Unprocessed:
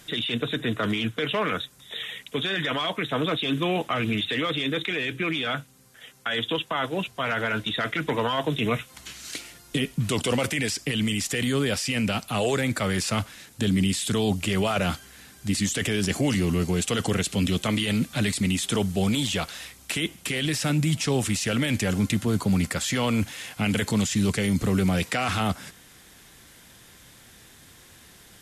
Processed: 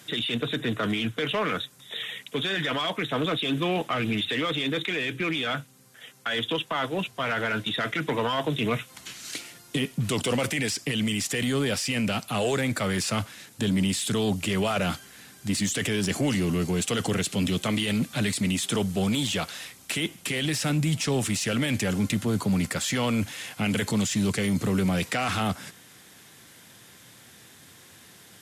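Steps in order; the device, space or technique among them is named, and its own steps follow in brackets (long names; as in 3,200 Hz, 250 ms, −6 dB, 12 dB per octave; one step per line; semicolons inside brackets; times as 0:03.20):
high-pass filter 94 Hz 24 dB per octave
parallel distortion (in parallel at −7 dB: hard clipping −27 dBFS, distortion −8 dB)
on the sum: level −3 dB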